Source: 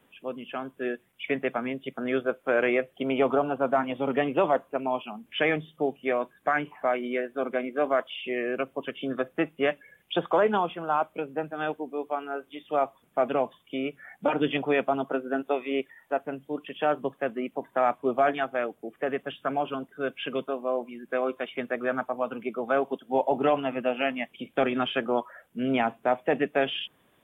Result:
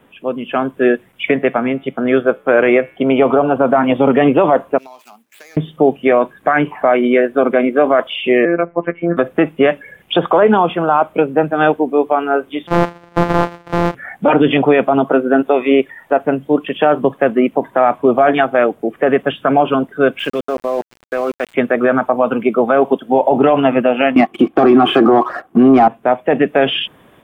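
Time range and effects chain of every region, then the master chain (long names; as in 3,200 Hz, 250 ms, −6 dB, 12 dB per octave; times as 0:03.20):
0:01.31–0:03.56: tuned comb filter 63 Hz, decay 0.74 s, harmonics odd, mix 40% + one half of a high-frequency compander decoder only
0:04.78–0:05.57: running median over 15 samples + first difference + downward compressor 16 to 1, threshold −50 dBFS
0:08.45–0:09.17: Chebyshev low-pass filter 2,200 Hz, order 5 + comb filter 7.2 ms, depth 30% + phases set to zero 171 Hz
0:12.67–0:13.95: samples sorted by size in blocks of 256 samples + downward compressor 2 to 1, threshold −31 dBFS + mid-hump overdrive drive 16 dB, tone 1,600 Hz, clips at −18 dBFS
0:20.19–0:21.54: low-shelf EQ 470 Hz −3 dB + output level in coarse steps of 18 dB + centre clipping without the shift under −46.5 dBFS
0:24.16–0:25.88: leveller curve on the samples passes 2 + hollow resonant body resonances 340/750/1,100 Hz, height 18 dB, ringing for 25 ms
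whole clip: high-shelf EQ 2,600 Hz −9 dB; automatic gain control gain up to 5 dB; boost into a limiter +15 dB; level −1 dB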